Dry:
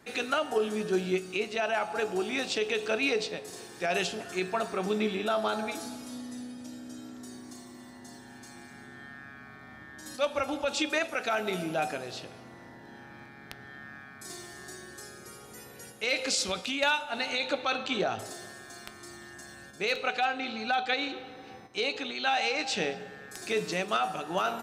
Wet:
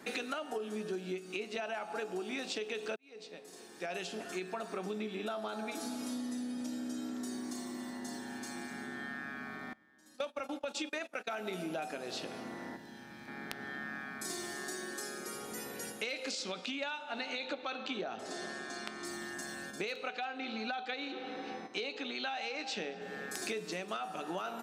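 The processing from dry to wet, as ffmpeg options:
-filter_complex "[0:a]asettb=1/sr,asplit=3[s0][s1][s2];[s0]atrim=end=9.734[s3];[s1]atrim=start=9.73:end=11.4,asetpts=PTS-STARTPTS,afade=t=in:d=0.004:c=qsin,afade=t=out:st=1.666:d=0.004:c=qsin,agate=range=0.0708:threshold=0.0158:ratio=16:release=100:detection=peak[s4];[s2]atrim=start=11.396[s5];[s3][s4]acrossfade=d=0.004:c1=hsin:c2=qsin[s6];[s6][s5]acrossfade=d=0.004:c1=qsin:c2=hsin,asettb=1/sr,asplit=3[s7][s8][s9];[s7]atrim=end=12.764[s10];[s8]atrim=start=12.76:end=13.28,asetpts=PTS-STARTPTS,afade=t=in:d=0.004:c=qsin,afade=t=out:st=0.516:d=0.004:c=qsin,acrossover=split=160|3000[s11][s12][s13];[s12]acompressor=threshold=0.00141:ratio=4:attack=3.2:release=140:knee=2.83:detection=peak[s14];[s11][s14][s13]amix=inputs=3:normalize=0[s15];[s9]atrim=start=13.276[s16];[s10][s15]acrossfade=d=0.004:c1=hsin:c2=qsin[s17];[s17][s16]acrossfade=d=0.004:c1=qsin:c2=hsin,asettb=1/sr,asplit=3[s18][s19][s20];[s18]atrim=end=14.554[s21];[s19]atrim=start=14.55:end=15.35,asetpts=PTS-STARTPTS,afade=t=in:d=0.004:c=qsin,afade=t=out:st=0.796:d=0.004:c=qsin,highpass=180[s22];[s20]atrim=start=15.346[s23];[s21][s22]acrossfade=d=0.004:c1=hsin:c2=qsin[s24];[s24][s23]acrossfade=d=0.004:c1=qsin:c2=hsin,asettb=1/sr,asplit=3[s25][s26][s27];[s25]atrim=end=16.314[s28];[s26]atrim=start=16.31:end=19.05,asetpts=PTS-STARTPTS,afade=t=in:d=0.004:c=qsin,afade=t=out:st=2.736:d=0.004:c=qsin,highpass=110,lowpass=5900[s29];[s27]atrim=start=19.046[s30];[s28][s29]acrossfade=d=0.004:c1=hsin:c2=qsin[s31];[s31][s30]acrossfade=d=0.004:c1=qsin:c2=hsin,asettb=1/sr,asplit=3[s32][s33][s34];[s32]atrim=end=20.094[s35];[s33]atrim=start=20.09:end=23.02,asetpts=PTS-STARTPTS,afade=t=in:d=0.004:c=qsin,afade=t=out:st=2.926:d=0.004:c=qsin,highpass=140,lowpass=6500[s36];[s34]atrim=start=23.016[s37];[s35][s36]acrossfade=d=0.004:c1=hsin:c2=qsin[s38];[s38][s37]acrossfade=d=0.004:c1=qsin:c2=hsin,asplit=2[s39][s40];[s39]atrim=end=2.96,asetpts=PTS-STARTPTS,afade=t=out:st=2.956:d=0.004:c=hsin[s41];[s40]atrim=start=2.96,asetpts=PTS-STARTPTS,afade=t=in:d=2.94[s42];[s41][s42]concat=n=2:v=0:a=1,lowshelf=f=150:t=q:w=1.5:g=-10,acompressor=threshold=0.01:ratio=10,volume=1.68"

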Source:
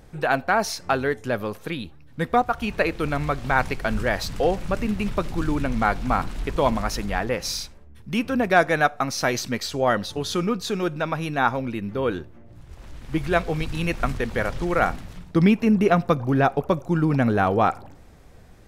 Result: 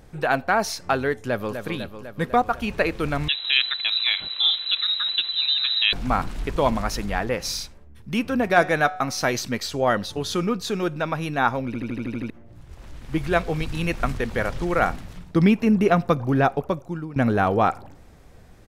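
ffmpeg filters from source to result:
-filter_complex "[0:a]asplit=2[s0][s1];[s1]afade=t=in:st=1.18:d=0.01,afade=t=out:st=1.58:d=0.01,aecho=0:1:250|500|750|1000|1250|1500|1750|2000|2250|2500|2750:0.398107|0.278675|0.195073|0.136551|0.0955855|0.0669099|0.0468369|0.0327858|0.0229501|0.0160651|0.0112455[s2];[s0][s2]amix=inputs=2:normalize=0,asettb=1/sr,asplit=3[s3][s4][s5];[s3]atrim=end=3.284[s6];[s4]atrim=start=3.28:end=5.93,asetpts=PTS-STARTPTS,afade=t=in:d=0.004:c=qsin,afade=t=out:st=2.646:d=0.004:c=qsin,lowpass=f=3400:t=q:w=0.5098,lowpass=f=3400:t=q:w=0.6013,lowpass=f=3400:t=q:w=0.9,lowpass=f=3400:t=q:w=2.563,afreqshift=-4000[s7];[s5]atrim=start=5.926[s8];[s6][s7]acrossfade=d=0.004:c1=hsin:c2=qsin[s9];[s9][s8]acrossfade=d=0.004:c1=qsin:c2=hsin,asettb=1/sr,asplit=3[s10][s11][s12];[s10]atrim=end=8.344[s13];[s11]atrim=start=8.34:end=9.25,asetpts=PTS-STARTPTS,afade=t=in:d=0.004:c=qsin,afade=t=out:st=0.906:d=0.004:c=qsin,bandreject=f=185.1:t=h:w=4,bandreject=f=370.2:t=h:w=4,bandreject=f=555.3:t=h:w=4,bandreject=f=740.4:t=h:w=4,bandreject=f=925.5:t=h:w=4,bandreject=f=1110.6:t=h:w=4,bandreject=f=1295.7:t=h:w=4,bandreject=f=1480.8:t=h:w=4,bandreject=f=1665.9:t=h:w=4,bandreject=f=1851:t=h:w=4,bandreject=f=2036.1:t=h:w=4,bandreject=f=2221.2:t=h:w=4,bandreject=f=2406.3:t=h:w=4,bandreject=f=2591.4:t=h:w=4,bandreject=f=2776.5:t=h:w=4,bandreject=f=2961.6:t=h:w=4,bandreject=f=3146.7:t=h:w=4,bandreject=f=3331.8:t=h:w=4,bandreject=f=3516.9:t=h:w=4,bandreject=f=3702:t=h:w=4,bandreject=f=3887.1:t=h:w=4,bandreject=f=4072.2:t=h:w=4,bandreject=f=4257.3:t=h:w=4,bandreject=f=4442.4:t=h:w=4,bandreject=f=4627.5:t=h:w=4,bandreject=f=4812.6:t=h:w=4,bandreject=f=4997.7:t=h:w=4,bandreject=f=5182.8:t=h:w=4,bandreject=f=5367.9:t=h:w=4,bandreject=f=5553:t=h:w=4,bandreject=f=5738.1:t=h:w=4,bandreject=f=5923.2:t=h:w=4,bandreject=f=6108.3:t=h:w=4,bandreject=f=6293.4:t=h:w=4,bandreject=f=6478.5:t=h:w=4,bandreject=f=6663.6:t=h:w=4,bandreject=f=6848.7:t=h:w=4,bandreject=f=7033.8:t=h:w=4[s14];[s12]atrim=start=9.246[s15];[s13][s14]acrossfade=d=0.004:c1=hsin:c2=qsin[s16];[s16][s15]acrossfade=d=0.004:c1=qsin:c2=hsin,asplit=10[s17][s18][s19][s20][s21][s22][s23][s24][s25][s26];[s17]atrim=end=11.742[s27];[s18]atrim=start=11.658:end=11.742[s28];[s19]atrim=start=11.658:end=11.742[s29];[s20]atrim=start=11.658:end=11.742[s30];[s21]atrim=start=11.658:end=11.742[s31];[s22]atrim=start=11.658:end=11.742[s32];[s23]atrim=start=11.658:end=11.742[s33];[s24]atrim=start=11.658:end=11.742[s34];[s25]atrim=start=12.298:end=17.16,asetpts=PTS-STARTPTS,afade=t=out:st=4.162:d=0.7:silence=0.105925[s35];[s26]atrim=start=17.16,asetpts=PTS-STARTPTS,afade=t=in:d=0.004:c=hsin:silence=0.105925[s36];[s27][s28]acrossfade=d=0.004:c1=hsin:c2=hsin[s37];[s37][s29]acrossfade=d=0.004:c1=hsin:c2=hsin[s38];[s38][s30]acrossfade=d=0.004:c1=hsin:c2=hsin[s39];[s39][s31]acrossfade=d=0.004:c1=hsin:c2=hsin[s40];[s40][s32]acrossfade=d=0.004:c1=hsin:c2=hsin[s41];[s41][s33]acrossfade=d=0.004:c1=hsin:c2=hsin[s42];[s42][s34]acrossfade=d=0.004:c1=hsin:c2=hsin[s43];[s35][s36]concat=n=2:v=0:a=1[s44];[s43][s44]acrossfade=d=0.004:c1=hsin:c2=hsin"

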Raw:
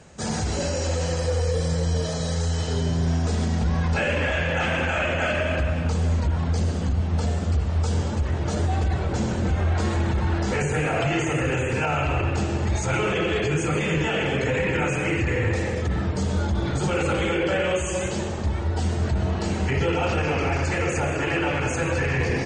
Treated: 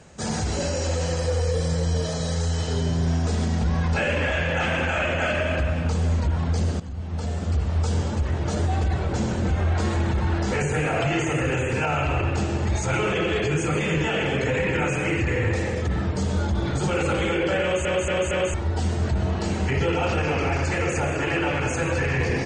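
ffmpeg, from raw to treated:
-filter_complex "[0:a]asplit=6[s0][s1][s2][s3][s4][s5];[s0]atrim=end=6.8,asetpts=PTS-STARTPTS,afade=t=out:st=6.796:d=0.004:c=hsin:silence=0.199526[s6];[s1]atrim=start=6.8:end=17.852,asetpts=PTS-STARTPTS,afade=t=in:d=0.84:silence=0.199526[s7];[s2]atrim=start=17.618:end=17.852[s8];[s3]atrim=start=17.618:end=17.852[s9];[s4]atrim=start=17.618:end=17.852[s10];[s5]atrim=start=18.538[s11];[s6][s7]concat=n=2:v=0:a=1[s12];[s12][s8]acrossfade=d=0.004:c1=hsin:c2=hsin[s13];[s13][s9]acrossfade=d=0.004:c1=hsin:c2=hsin[s14];[s14][s10]acrossfade=d=0.004:c1=hsin:c2=hsin[s15];[s15][s11]acrossfade=d=0.004:c1=hsin:c2=hsin"

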